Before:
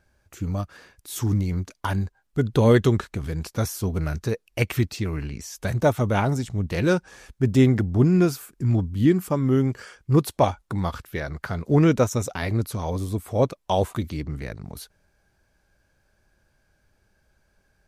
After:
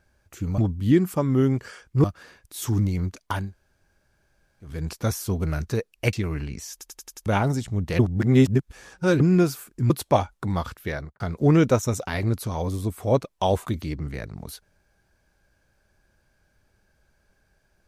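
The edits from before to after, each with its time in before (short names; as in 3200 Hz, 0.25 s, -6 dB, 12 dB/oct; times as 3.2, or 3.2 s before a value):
1.97–3.26 room tone, crossfade 0.24 s
4.67–4.95 cut
5.54 stutter in place 0.09 s, 6 plays
6.81–8.02 reverse
8.72–10.18 move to 0.58
11.22–11.48 studio fade out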